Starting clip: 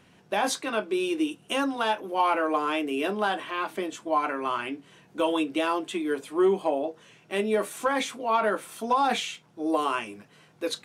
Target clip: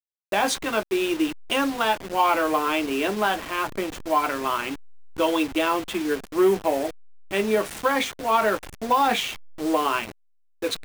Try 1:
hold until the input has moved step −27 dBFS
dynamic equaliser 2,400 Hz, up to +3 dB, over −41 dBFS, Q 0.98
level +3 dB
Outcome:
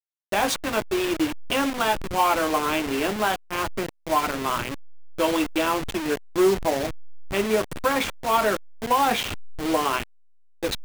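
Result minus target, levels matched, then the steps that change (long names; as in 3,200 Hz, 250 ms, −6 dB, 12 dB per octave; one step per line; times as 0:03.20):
hold until the input has moved: distortion +7 dB
change: hold until the input has moved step −33.5 dBFS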